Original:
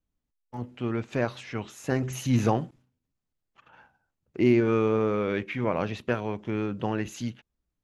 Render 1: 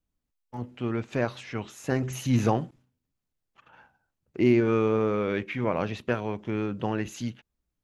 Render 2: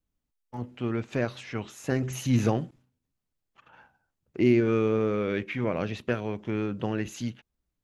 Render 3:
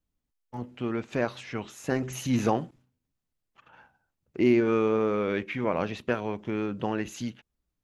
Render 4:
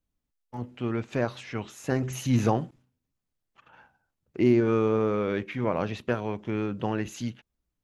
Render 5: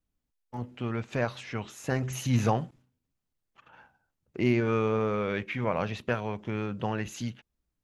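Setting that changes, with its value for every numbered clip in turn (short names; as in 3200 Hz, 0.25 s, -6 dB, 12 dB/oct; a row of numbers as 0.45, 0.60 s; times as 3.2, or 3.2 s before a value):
dynamic EQ, frequency: 6400, 930, 110, 2400, 320 Hz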